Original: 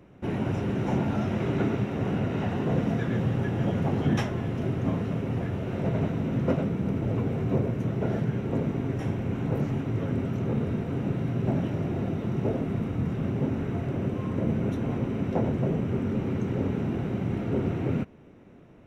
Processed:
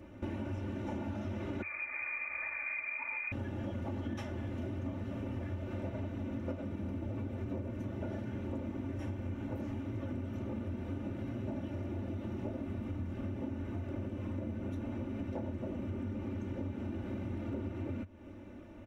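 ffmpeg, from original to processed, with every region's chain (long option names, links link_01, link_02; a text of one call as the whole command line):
ffmpeg -i in.wav -filter_complex "[0:a]asettb=1/sr,asplit=3[link_01][link_02][link_03];[link_01]atrim=end=1.624[link_04];[link_02]atrim=start=1.62:end=3.32,asetpts=PTS-STARTPTS,afade=type=in:duration=0.004:curve=qsin,afade=type=out:start_time=1.696:duration=0.004:curve=qsin,equalizer=frequency=310:width=0.97:gain=-9,lowpass=frequency=2200:width_type=q:width=0.5098,lowpass=frequency=2200:width_type=q:width=0.6013,lowpass=frequency=2200:width_type=q:width=0.9,lowpass=frequency=2200:width_type=q:width=2.563,afreqshift=-2600[link_05];[link_03]atrim=start=3.316[link_06];[link_04][link_05]acrossfade=duration=0.004:curve1=hsin:curve2=qsin[link_07];[link_07][link_06]acrossfade=duration=0.004:curve1=qsin:curve2=hsin,equalizer=frequency=92:width=3.3:gain=10,aecho=1:1:3.4:1,acompressor=threshold=-35dB:ratio=6,volume=-1.5dB" out.wav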